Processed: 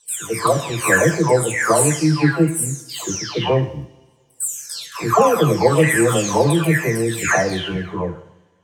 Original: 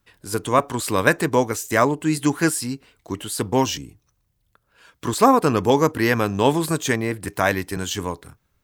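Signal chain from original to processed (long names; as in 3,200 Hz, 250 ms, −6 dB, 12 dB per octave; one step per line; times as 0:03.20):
every frequency bin delayed by itself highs early, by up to 732 ms
automatic gain control gain up to 3.5 dB
noise gate −36 dBFS, range −15 dB
graphic EQ with 10 bands 125 Hz +9 dB, 500 Hz +5 dB, 2,000 Hz +6 dB, 8,000 Hz +9 dB
coupled-rooms reverb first 0.73 s, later 2.5 s, from −22 dB, DRR 9 dB
level −2.5 dB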